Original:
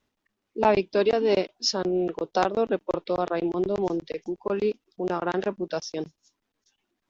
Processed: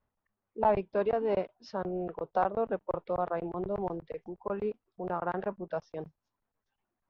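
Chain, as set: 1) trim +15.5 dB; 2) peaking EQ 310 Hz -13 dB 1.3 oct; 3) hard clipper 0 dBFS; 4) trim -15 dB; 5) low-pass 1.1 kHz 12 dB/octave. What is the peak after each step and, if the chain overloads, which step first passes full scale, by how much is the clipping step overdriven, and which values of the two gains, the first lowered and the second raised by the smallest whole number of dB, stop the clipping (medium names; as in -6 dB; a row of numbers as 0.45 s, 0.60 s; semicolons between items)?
+8.0 dBFS, +6.5 dBFS, 0.0 dBFS, -15.0 dBFS, -15.5 dBFS; step 1, 6.5 dB; step 1 +8.5 dB, step 4 -8 dB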